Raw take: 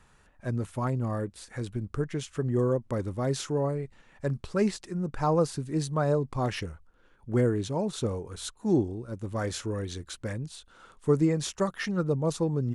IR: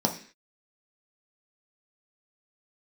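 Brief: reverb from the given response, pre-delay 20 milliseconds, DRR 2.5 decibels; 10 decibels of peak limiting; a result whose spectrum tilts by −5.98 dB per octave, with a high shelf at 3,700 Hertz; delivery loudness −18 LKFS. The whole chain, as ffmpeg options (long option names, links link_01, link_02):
-filter_complex "[0:a]highshelf=frequency=3700:gain=8.5,alimiter=limit=-21.5dB:level=0:latency=1,asplit=2[link_01][link_02];[1:a]atrim=start_sample=2205,adelay=20[link_03];[link_02][link_03]afir=irnorm=-1:irlink=0,volume=-13dB[link_04];[link_01][link_04]amix=inputs=2:normalize=0,volume=9.5dB"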